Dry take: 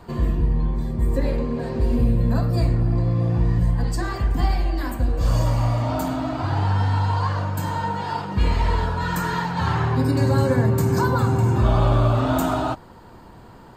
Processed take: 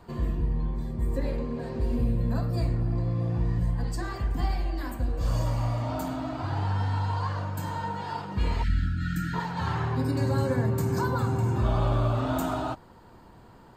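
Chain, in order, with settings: 8.63–9.34 s: spectral selection erased 340–1300 Hz; 8.68–9.40 s: tilt shelf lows +4.5 dB, about 1.2 kHz; trim -7 dB

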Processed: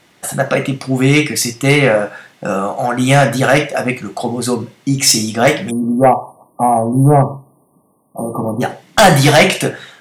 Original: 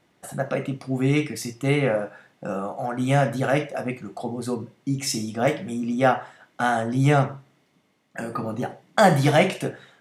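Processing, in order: tilt shelf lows -4 dB, about 1.4 kHz; spectral selection erased 5.71–8.61 s, 1.2–8.6 kHz; sine folder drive 7 dB, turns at -5 dBFS; trim +3 dB

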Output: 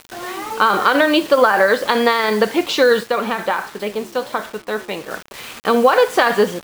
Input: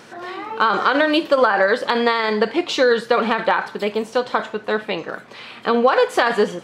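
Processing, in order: word length cut 6-bit, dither none; 3.03–5.11 s: flange 1.3 Hz, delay 7.4 ms, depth 8.6 ms, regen +88%; trim +2.5 dB

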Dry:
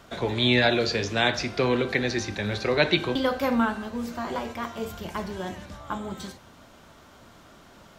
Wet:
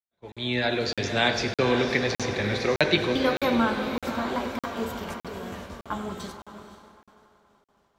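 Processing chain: fade-in on the opening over 1.16 s; 5.02–5.53 s: compressor with a negative ratio -39 dBFS, ratio -1; echo that smears into a reverb 535 ms, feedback 50%, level -8 dB; expander -35 dBFS; tape echo 97 ms, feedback 86%, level -13 dB, low-pass 5 kHz; crackling interface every 0.61 s, samples 2048, zero, from 0.32 s

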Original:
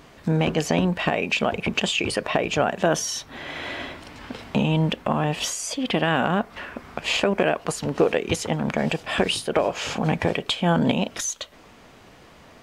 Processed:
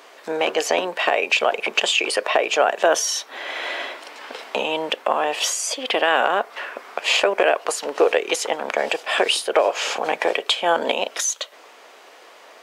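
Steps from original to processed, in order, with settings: high-pass 420 Hz 24 dB/octave; trim +5 dB

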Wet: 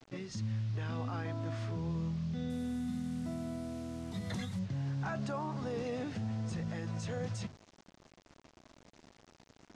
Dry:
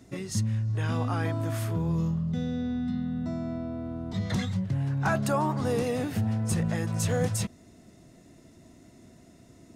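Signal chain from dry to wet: hum notches 50/100/150 Hz; peak limiter -23 dBFS, peak gain reduction 6.5 dB; bit crusher 8-bit; low-pass 5.8 kHz 24 dB/octave, from 2.50 s 11 kHz, from 4.59 s 6.3 kHz; trim -6.5 dB

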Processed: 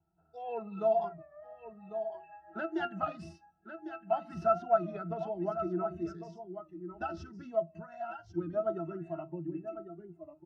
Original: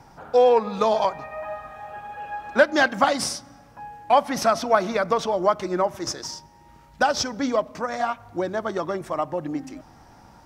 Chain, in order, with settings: pitch-class resonator E, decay 0.13 s; on a send: delay 1100 ms -9 dB; on the sum: spectral noise reduction 18 dB; warped record 33 1/3 rpm, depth 100 cents

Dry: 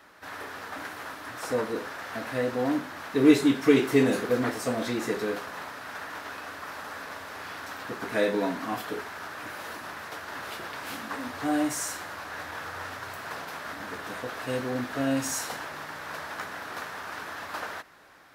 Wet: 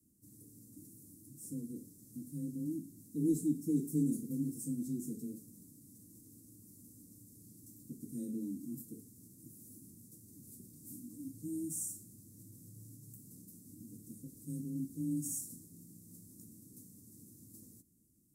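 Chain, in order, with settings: elliptic band-stop 230–8100 Hz, stop band 50 dB; frequency shift +21 Hz; trim -3 dB

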